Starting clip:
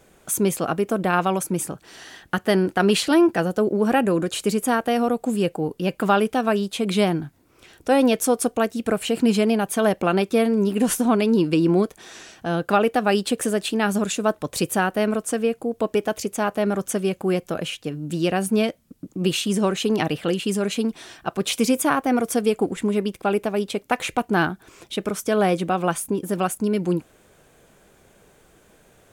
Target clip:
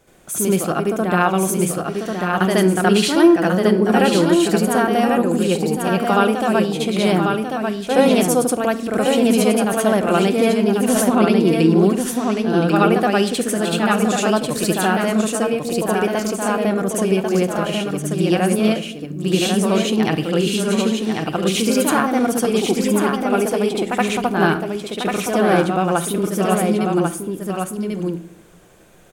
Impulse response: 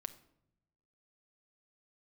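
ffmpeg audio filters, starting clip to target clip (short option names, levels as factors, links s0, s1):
-filter_complex "[0:a]aecho=1:1:1093:0.596,asplit=2[s0][s1];[1:a]atrim=start_sample=2205,adelay=73[s2];[s1][s2]afir=irnorm=-1:irlink=0,volume=2.51[s3];[s0][s3]amix=inputs=2:normalize=0,volume=0.708"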